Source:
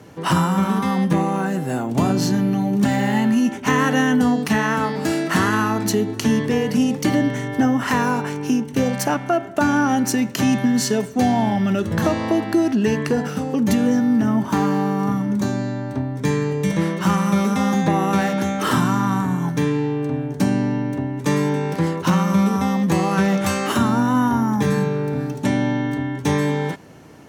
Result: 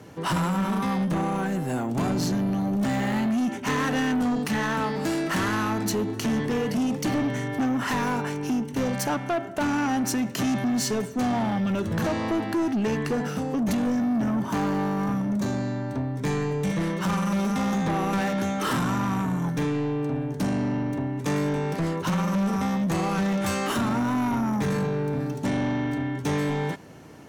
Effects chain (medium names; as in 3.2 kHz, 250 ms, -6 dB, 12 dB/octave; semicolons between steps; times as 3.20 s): saturation -19 dBFS, distortion -11 dB; trim -2 dB